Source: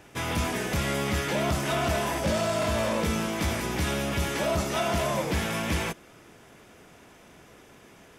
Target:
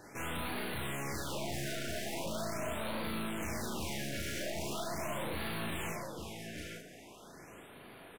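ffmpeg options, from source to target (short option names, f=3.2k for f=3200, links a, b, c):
-filter_complex "[0:a]lowshelf=f=87:g=-9.5,aecho=1:1:109|857:0.251|0.2,aeval=exprs='(tanh(89.1*val(0)+0.45)-tanh(0.45))/89.1':c=same,asplit=2[a][b];[b]adelay=37,volume=-2dB[c];[a][c]amix=inputs=2:normalize=0,afftfilt=real='re*(1-between(b*sr/1024,960*pow(6700/960,0.5+0.5*sin(2*PI*0.41*pts/sr))/1.41,960*pow(6700/960,0.5+0.5*sin(2*PI*0.41*pts/sr))*1.41))':imag='im*(1-between(b*sr/1024,960*pow(6700/960,0.5+0.5*sin(2*PI*0.41*pts/sr))/1.41,960*pow(6700/960,0.5+0.5*sin(2*PI*0.41*pts/sr))*1.41))':win_size=1024:overlap=0.75"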